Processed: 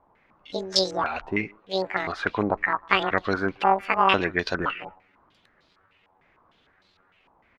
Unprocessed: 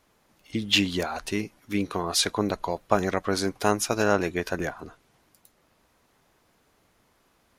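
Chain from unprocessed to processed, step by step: pitch shift switched off and on +11 st, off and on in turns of 517 ms; speakerphone echo 150 ms, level -25 dB; step-sequenced low-pass 6.6 Hz 910–4200 Hz

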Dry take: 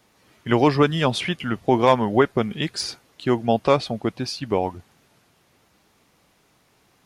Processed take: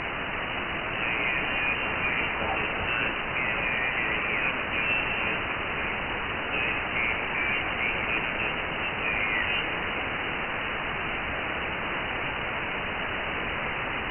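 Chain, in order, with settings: rattle on loud lows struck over -23 dBFS, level -12 dBFS; high-order bell 710 Hz +11 dB; reverse; compression 5:1, threshold -35 dBFS, peak gain reduction 29.5 dB; reverse; peak limiter -32.5 dBFS, peak gain reduction 12.5 dB; granular stretch 2×, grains 34 ms; word length cut 6-bit, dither triangular; on a send: echo whose repeats swap between lows and highs 141 ms, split 1.2 kHz, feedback 75%, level -7 dB; on the sum: companded quantiser 2-bit; frequency inversion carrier 2.9 kHz; trim +7.5 dB

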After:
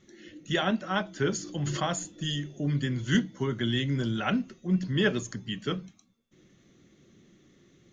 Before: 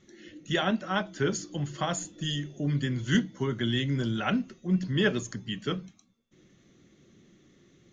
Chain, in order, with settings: 1.40–1.87 s: decay stretcher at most 31 dB/s

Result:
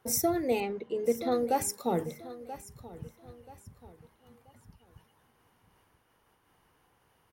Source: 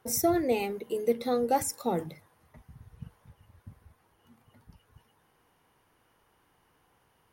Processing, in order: 0.60–1.32 s: distance through air 140 m; feedback delay 982 ms, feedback 30%, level -15 dB; random flutter of the level, depth 55%; trim +2 dB

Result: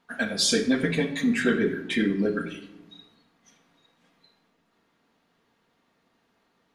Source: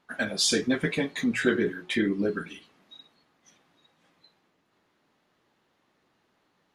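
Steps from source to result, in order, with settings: simulated room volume 3700 m³, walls furnished, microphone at 1.7 m

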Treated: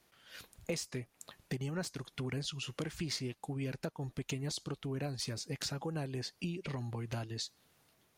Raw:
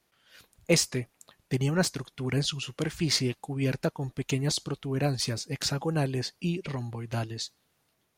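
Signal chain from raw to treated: compression 5:1, threshold -40 dBFS, peak gain reduction 19.5 dB; trim +3 dB

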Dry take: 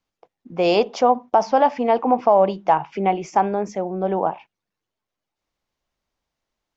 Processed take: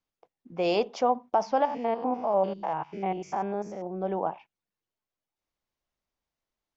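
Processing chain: 1.65–3.87 s: spectrogram pixelated in time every 100 ms; trim -8 dB

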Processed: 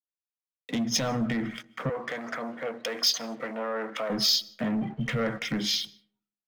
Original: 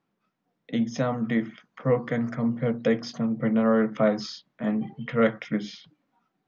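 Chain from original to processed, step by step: low-pass that closes with the level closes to 2.1 kHz, closed at -17 dBFS; peak limiter -22 dBFS, peak gain reduction 11 dB; treble shelf 2.1 kHz +11 dB; waveshaping leveller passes 2; 1.89–4.10 s: high-pass 500 Hz 12 dB/octave; compression 6:1, threshold -29 dBFS, peak gain reduction 8 dB; waveshaping leveller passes 1; reverberation RT60 1.0 s, pre-delay 115 ms, DRR 19 dB; three bands expanded up and down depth 100%; trim -1.5 dB

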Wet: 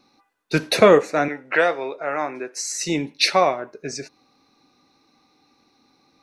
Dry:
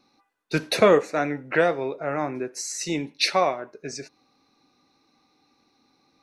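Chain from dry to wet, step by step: 1.28–2.66 s: frequency weighting A; trim +4 dB

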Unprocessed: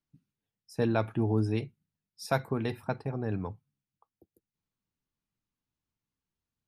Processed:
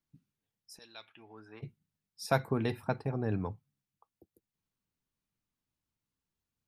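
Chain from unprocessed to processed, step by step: 0.77–1.62 s: band-pass filter 6.1 kHz -> 1.1 kHz, Q 3.1

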